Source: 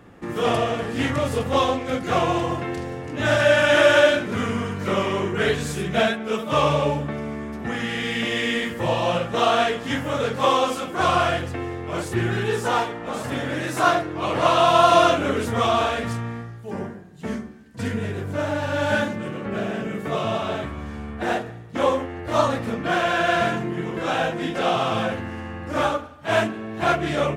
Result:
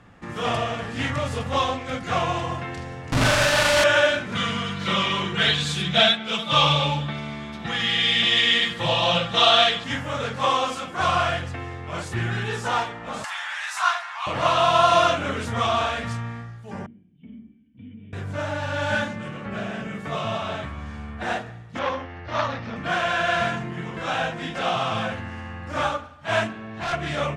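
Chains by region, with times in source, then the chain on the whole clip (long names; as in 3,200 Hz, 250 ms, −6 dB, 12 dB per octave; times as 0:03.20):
0:03.12–0:03.84: parametric band 1,800 Hz −2 dB 0.98 octaves + comparator with hysteresis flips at −30 dBFS + flutter between parallel walls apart 7 metres, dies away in 0.62 s
0:04.35–0:09.84: parametric band 3,600 Hz +13.5 dB 0.68 octaves + comb filter 5.9 ms, depth 55%
0:13.24–0:14.27: Butterworth high-pass 810 Hz 48 dB per octave + upward compression, threshold −24 dBFS
0:16.86–0:18.13: dynamic equaliser 2,200 Hz, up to −4 dB, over −46 dBFS, Q 1 + downward compressor 3 to 1, threshold −28 dBFS + formant resonators in series i
0:21.79–0:22.76: Chebyshev low-pass filter 5,700 Hz, order 4 + saturating transformer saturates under 1,200 Hz
0:26.53–0:26.93: high-frequency loss of the air 57 metres + hard clipping −23.5 dBFS
whole clip: low-pass filter 8,000 Hz 12 dB per octave; parametric band 370 Hz −10 dB 1.2 octaves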